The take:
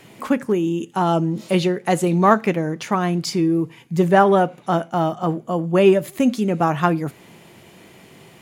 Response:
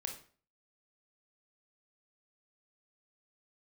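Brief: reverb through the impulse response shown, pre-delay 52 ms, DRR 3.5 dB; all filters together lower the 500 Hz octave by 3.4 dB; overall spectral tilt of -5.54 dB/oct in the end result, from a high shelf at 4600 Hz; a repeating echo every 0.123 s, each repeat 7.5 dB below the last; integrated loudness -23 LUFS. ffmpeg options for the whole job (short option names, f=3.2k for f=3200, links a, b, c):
-filter_complex "[0:a]equalizer=f=500:t=o:g=-5,highshelf=f=4.6k:g=7,aecho=1:1:123|246|369|492|615:0.422|0.177|0.0744|0.0312|0.0131,asplit=2[a][b];[1:a]atrim=start_sample=2205,adelay=52[c];[b][c]afir=irnorm=-1:irlink=0,volume=-2.5dB[d];[a][d]amix=inputs=2:normalize=0,volume=-4.5dB"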